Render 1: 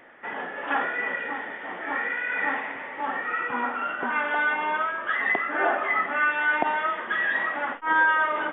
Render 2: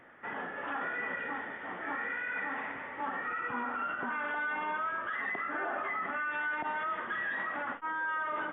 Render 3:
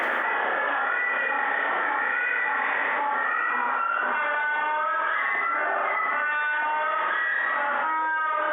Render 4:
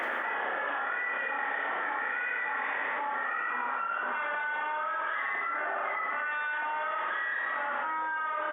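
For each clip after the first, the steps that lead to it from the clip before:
peaking EQ 1.3 kHz +5.5 dB 0.78 oct; peak limiter -19 dBFS, peak gain reduction 11 dB; peaking EQ 78 Hz +12.5 dB 3 oct; trim -8.5 dB
high-pass 510 Hz 12 dB/octave; Schroeder reverb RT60 0.73 s, combs from 28 ms, DRR -3 dB; level flattener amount 100%
frequency-shifting echo 244 ms, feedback 30%, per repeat -55 Hz, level -15.5 dB; trim -7 dB

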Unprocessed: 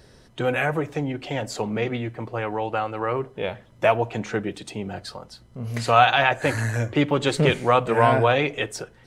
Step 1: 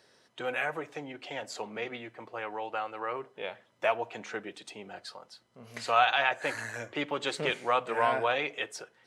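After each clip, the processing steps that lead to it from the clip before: frequency weighting A; trim -7.5 dB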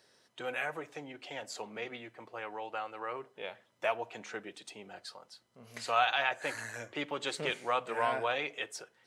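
treble shelf 4.9 kHz +5.5 dB; trim -4.5 dB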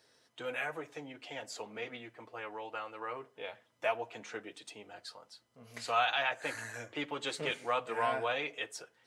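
comb of notches 190 Hz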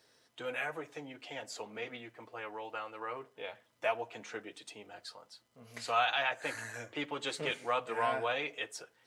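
crackle 490 per s -66 dBFS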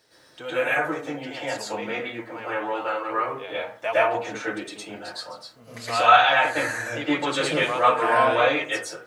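reverberation RT60 0.45 s, pre-delay 102 ms, DRR -9.5 dB; trim +4 dB

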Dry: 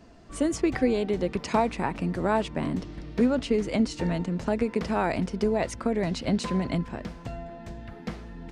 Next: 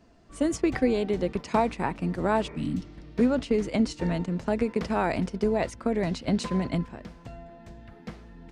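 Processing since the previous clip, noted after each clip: gate -30 dBFS, range -6 dB; spectral replace 2.49–2.90 s, 360–2500 Hz both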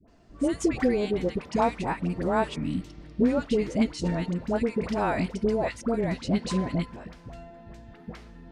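phase dispersion highs, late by 81 ms, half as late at 840 Hz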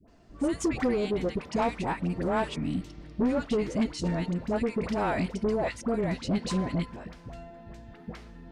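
saturation -20 dBFS, distortion -15 dB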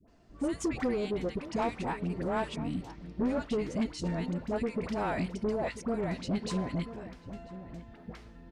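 echo from a far wall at 170 m, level -13 dB; trim -4 dB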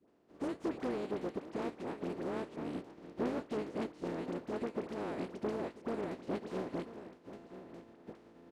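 spectral contrast reduction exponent 0.33; band-pass filter 340 Hz, Q 1.5; trim +1.5 dB

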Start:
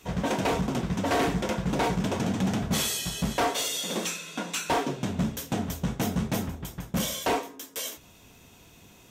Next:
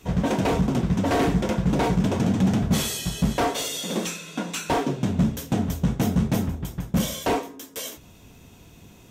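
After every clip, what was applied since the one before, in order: bass shelf 410 Hz +8 dB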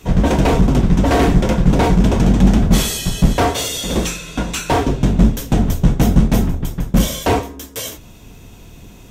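octave divider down 2 oct, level +1 dB; trim +7 dB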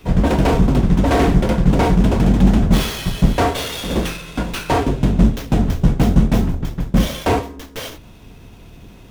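sliding maximum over 5 samples; trim -1 dB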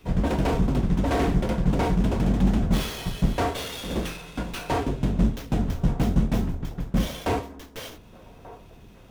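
feedback echo behind a band-pass 1187 ms, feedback 50%, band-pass 750 Hz, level -17 dB; trim -8.5 dB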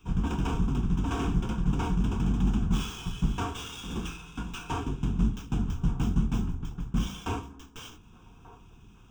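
static phaser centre 2.9 kHz, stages 8; de-hum 64.34 Hz, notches 5; trim -3 dB

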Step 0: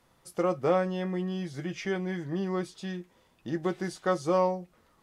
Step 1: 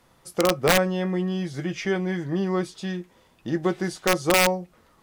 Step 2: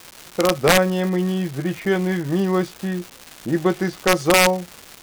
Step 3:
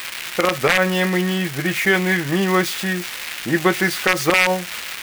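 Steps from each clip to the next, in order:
integer overflow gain 17 dB; trim +6 dB
level-controlled noise filter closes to 350 Hz, open at -19 dBFS; level rider gain up to 4 dB; crackle 510 per s -28 dBFS; trim +1 dB
zero-crossing glitches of -21 dBFS; peaking EQ 2.1 kHz +13 dB 1.8 oct; peak limiter -5 dBFS, peak gain reduction 11 dB

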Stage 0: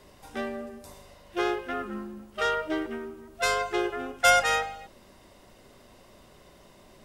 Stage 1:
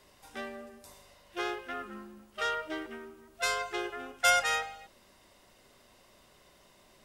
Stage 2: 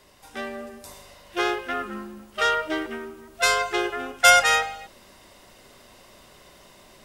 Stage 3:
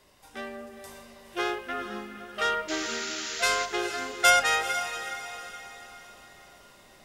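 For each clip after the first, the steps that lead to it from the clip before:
tilt shelf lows -4 dB, about 820 Hz; trim -6.5 dB
level rider gain up to 5 dB; trim +5 dB
painted sound noise, 2.68–3.66 s, 1.2–7.4 kHz -31 dBFS; echo that smears into a reverb 458 ms, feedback 45%, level -10 dB; trim -5 dB

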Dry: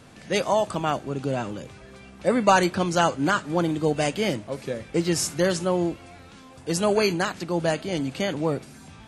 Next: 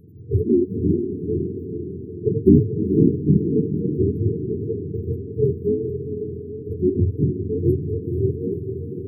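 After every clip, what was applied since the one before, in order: spectrum inverted on a logarithmic axis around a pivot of 480 Hz; echo that smears into a reverb 473 ms, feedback 58%, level -7 dB; FFT band-reject 470–11000 Hz; trim +5.5 dB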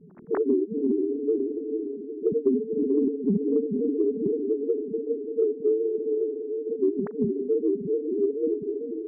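formants replaced by sine waves; compression 6:1, threshold -20 dBFS, peak gain reduction 12 dB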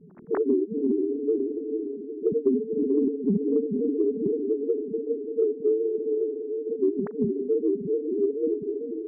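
no audible change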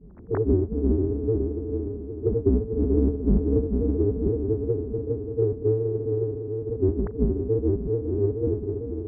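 octave divider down 2 oct, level +3 dB; distance through air 310 m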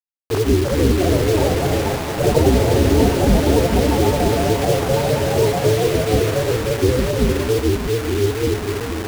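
in parallel at -11 dB: one-sided clip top -24 dBFS; on the sum: bit crusher 5-bit; ever faster or slower copies 406 ms, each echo +4 st, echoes 3; trim +3.5 dB

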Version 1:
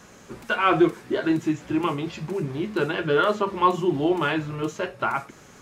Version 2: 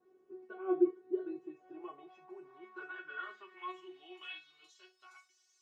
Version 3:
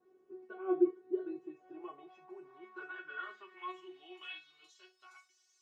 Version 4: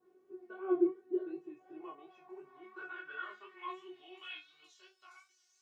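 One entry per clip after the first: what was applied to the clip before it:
band-pass sweep 380 Hz -> 5.3 kHz, 1.13–5.05 s; feedback comb 370 Hz, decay 0.2 s, harmonics all, mix 100%; trim +1.5 dB
no audible change
chorus 2.8 Hz, delay 19.5 ms, depth 4.7 ms; trim +3 dB

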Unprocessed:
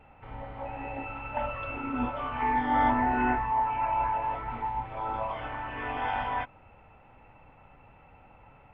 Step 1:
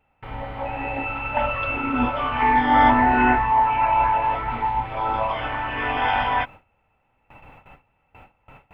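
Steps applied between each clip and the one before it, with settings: gate with hold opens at -44 dBFS; treble shelf 2.9 kHz +10 dB; trim +8 dB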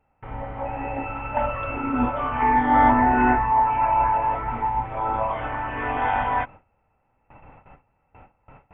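Gaussian low-pass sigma 3.7 samples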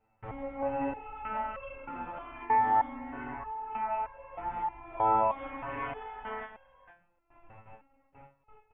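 compression 6:1, threshold -26 dBFS, peak gain reduction 13 dB; delay 471 ms -14 dB; resonator arpeggio 3.2 Hz 110–540 Hz; trim +6 dB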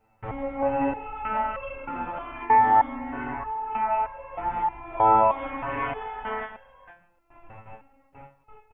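delay 144 ms -23.5 dB; trim +7.5 dB

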